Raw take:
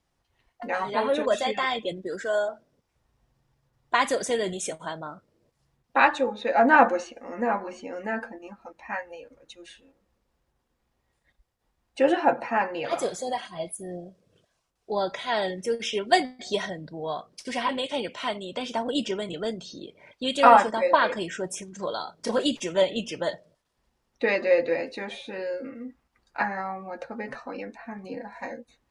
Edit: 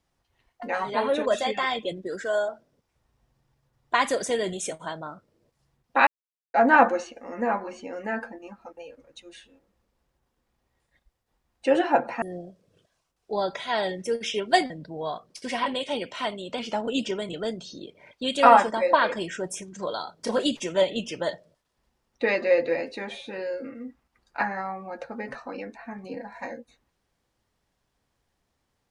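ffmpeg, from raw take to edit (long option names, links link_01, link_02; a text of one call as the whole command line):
ffmpeg -i in.wav -filter_complex "[0:a]asplit=8[link_01][link_02][link_03][link_04][link_05][link_06][link_07][link_08];[link_01]atrim=end=6.07,asetpts=PTS-STARTPTS,afade=type=out:start_time=6.066:duration=0.004:curve=hsin[link_09];[link_02]atrim=start=6.07:end=6.54,asetpts=PTS-STARTPTS,volume=0[link_10];[link_03]atrim=start=6.54:end=8.772,asetpts=PTS-STARTPTS,afade=type=in:duration=0.004:curve=hsin[link_11];[link_04]atrim=start=9.098:end=12.552[link_12];[link_05]atrim=start=13.808:end=16.292[link_13];[link_06]atrim=start=16.728:end=18.624[link_14];[link_07]atrim=start=18.62:end=19,asetpts=PTS-STARTPTS,asetrate=41013,aresample=44100,atrim=end_sample=18019,asetpts=PTS-STARTPTS[link_15];[link_08]atrim=start=18.996[link_16];[link_09][link_10][link_11]concat=n=3:v=0:a=1[link_17];[link_17][link_12]acrossfade=duration=0.004:curve1=hsin:curve2=hsin[link_18];[link_18][link_13]acrossfade=duration=0.004:curve1=hsin:curve2=hsin[link_19];[link_19][link_14]acrossfade=duration=0.004:curve1=hsin:curve2=hsin[link_20];[link_20][link_15]acrossfade=duration=0.004:curve1=hsin:curve2=hsin[link_21];[link_21][link_16]acrossfade=duration=0.004:curve1=hsin:curve2=hsin" out.wav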